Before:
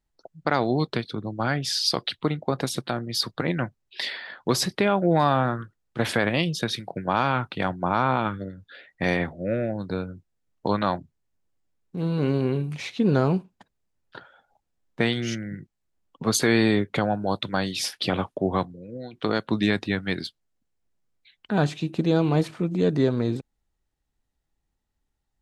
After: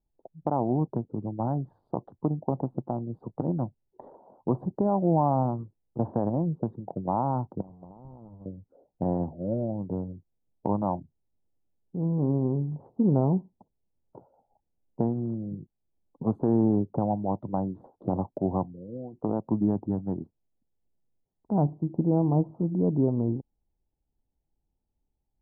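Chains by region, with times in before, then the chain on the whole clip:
7.61–8.46 half-waves squared off + passive tone stack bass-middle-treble 5-5-5 + compressor 12:1, threshold -35 dBFS
whole clip: Wiener smoothing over 25 samples; elliptic low-pass 920 Hz, stop band 60 dB; dynamic EQ 450 Hz, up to -6 dB, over -38 dBFS, Q 2.2

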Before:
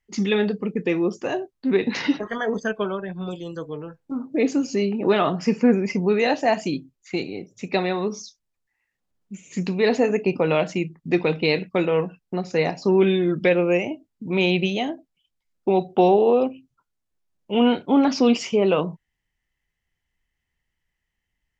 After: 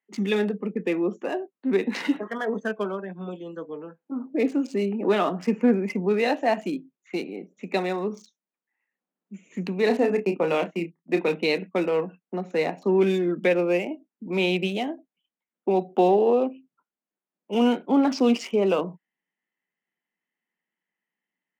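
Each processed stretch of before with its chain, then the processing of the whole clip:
9.86–11.35 gate -30 dBFS, range -18 dB + doubler 30 ms -7 dB
whole clip: Wiener smoothing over 9 samples; steep high-pass 180 Hz 48 dB/oct; gain -2.5 dB

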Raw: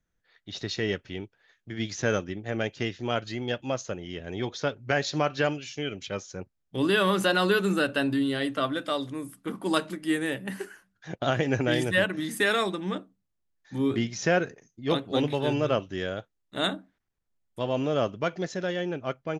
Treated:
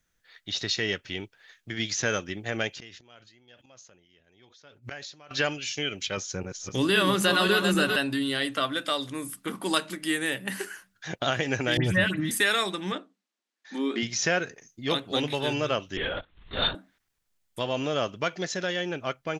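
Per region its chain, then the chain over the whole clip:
2.7–5.31 flipped gate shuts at -31 dBFS, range -31 dB + sustainer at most 67 dB/s
6.17–7.96 regenerating reverse delay 0.262 s, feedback 46%, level -5 dB + low shelf 350 Hz +7 dB
11.77–12.31 tone controls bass +14 dB, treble -9 dB + dispersion highs, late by 84 ms, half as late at 2500 Hz
12.92–14.03 brick-wall FIR high-pass 200 Hz + air absorption 76 m
15.97–16.75 upward compressor, threshold -31 dBFS + LPC vocoder at 8 kHz whisper
whole clip: tilt shelf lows -5.5 dB, about 1200 Hz; compressor 1.5:1, threshold -39 dBFS; gain +6.5 dB

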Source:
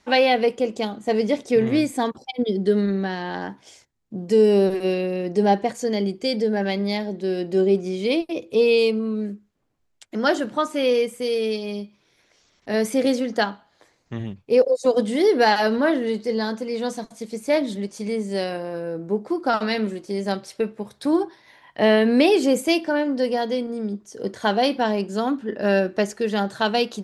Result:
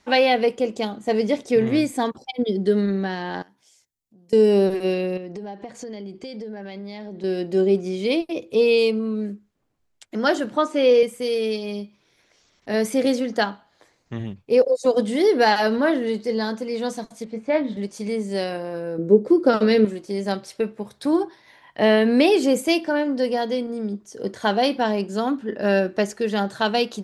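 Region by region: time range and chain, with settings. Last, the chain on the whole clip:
3.42–4.33 pre-emphasis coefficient 0.8 + compressor 2:1, threshold -58 dBFS
5.17–7.24 compressor 12:1, threshold -30 dBFS + air absorption 65 m
10.56–11.03 BPF 230–7300 Hz + bell 400 Hz +5.5 dB 1.4 oct
17.24–17.77 LPF 2300 Hz + notch 380 Hz, Q 5.1 + doubler 23 ms -8 dB
18.98–19.85 HPF 50 Hz + resonant low shelf 620 Hz +6 dB, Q 3
whole clip: dry

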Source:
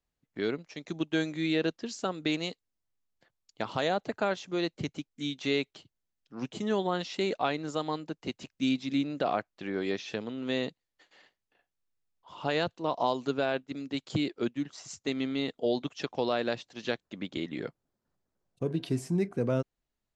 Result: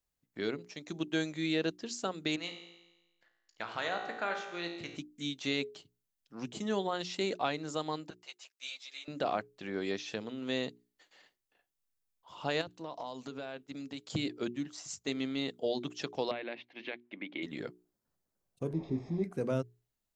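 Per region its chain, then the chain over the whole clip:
2.36–4.97 bell 1700 Hz +13 dB 2.3 oct + resonator 57 Hz, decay 1.1 s, mix 80% + dark delay 85 ms, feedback 46%, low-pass 1100 Hz, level -9.5 dB
8.1–9.08 Bessel high-pass 910 Hz, order 6 + ensemble effect
12.61–14.15 notch 370 Hz, Q 9 + compressor 5:1, threshold -34 dBFS
16.31–17.43 compressor 3:1, threshold -31 dBFS + speaker cabinet 290–3100 Hz, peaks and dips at 300 Hz +6 dB, 460 Hz -4 dB, 1300 Hz -5 dB, 2200 Hz +10 dB
18.73–19.24 delta modulation 32 kbps, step -33 dBFS + running mean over 30 samples + doubler 19 ms -11 dB
whole clip: high shelf 6600 Hz +10 dB; notches 60/120/180/240/300/360/420 Hz; gain -3.5 dB

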